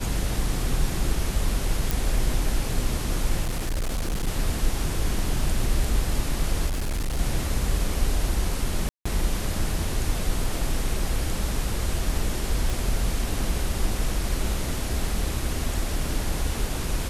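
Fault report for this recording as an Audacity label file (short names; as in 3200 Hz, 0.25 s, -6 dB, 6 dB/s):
1.910000	1.910000	pop
3.410000	4.280000	clipped -22.5 dBFS
6.660000	7.190000	clipped -23 dBFS
8.890000	9.050000	gap 0.165 s
12.700000	12.700000	pop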